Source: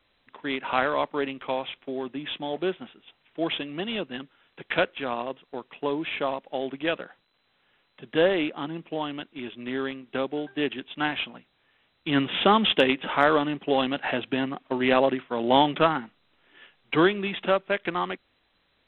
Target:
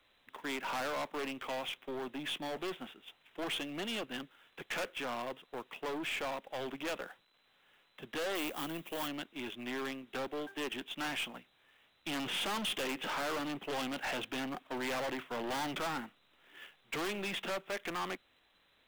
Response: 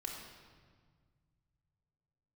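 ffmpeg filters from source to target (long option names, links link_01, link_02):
-filter_complex "[0:a]acrossover=split=390|770[link_01][link_02][link_03];[link_03]acrusher=bits=3:mode=log:mix=0:aa=0.000001[link_04];[link_01][link_02][link_04]amix=inputs=3:normalize=0,asettb=1/sr,asplit=3[link_05][link_06][link_07];[link_05]atrim=end=8.354[link_08];[link_06]atrim=start=8.35:end=9.08,asetpts=PTS-STARTPTS,afade=type=in:duration=0.004:curve=qsin,afade=type=out:start_time=0.726:duration=0.004:curve=qsin,aemphasis=mode=production:type=75kf[link_09];[link_07]atrim=start=9.076[link_10];[link_08][link_09]acrossfade=duration=0.004:curve1=hsin:curve2=qsin[link_11];[link_11][link_10]acrossfade=duration=0.004:curve1=qsin:curve2=hsin,asettb=1/sr,asplit=3[link_12][link_13][link_14];[link_12]atrim=end=10.284[link_15];[link_13]atrim=start=10.28:end=10.74,asetpts=PTS-STARTPTS,afade=type=in:duration=0.004:curve=qsin,afade=type=out:start_time=0.456:duration=0.004:curve=qsin,highpass=240[link_16];[link_14]atrim=start=10.736[link_17];[link_15][link_16]acrossfade=duration=0.004:curve1=hsin:curve2=qsin[link_18];[link_18][link_17]acrossfade=duration=0.004:curve1=qsin:curve2=hsin,aeval=exprs='(tanh(44.7*val(0)+0.25)-tanh(0.25))/44.7':channel_layout=same,lowshelf=frequency=350:gain=-6"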